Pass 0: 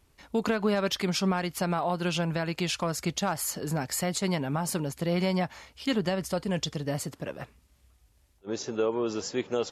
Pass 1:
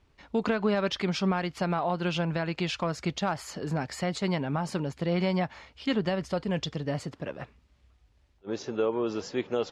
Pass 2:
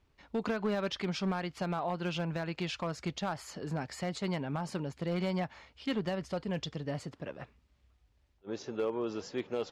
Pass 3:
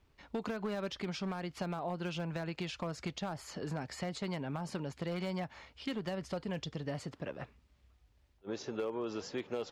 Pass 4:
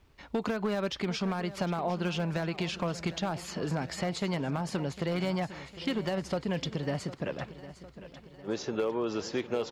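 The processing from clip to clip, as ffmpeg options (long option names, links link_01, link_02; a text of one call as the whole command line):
ffmpeg -i in.wav -af "lowpass=4200" out.wav
ffmpeg -i in.wav -af "volume=20dB,asoftclip=hard,volume=-20dB,volume=-5.5dB" out.wav
ffmpeg -i in.wav -filter_complex "[0:a]acrossover=split=630|6900[link_01][link_02][link_03];[link_01]acompressor=threshold=-38dB:ratio=4[link_04];[link_02]acompressor=threshold=-44dB:ratio=4[link_05];[link_03]acompressor=threshold=-58dB:ratio=4[link_06];[link_04][link_05][link_06]amix=inputs=3:normalize=0,volume=1.5dB" out.wav
ffmpeg -i in.wav -af "aecho=1:1:755|1510|2265|3020|3775:0.178|0.0996|0.0558|0.0312|0.0175,volume=6.5dB" out.wav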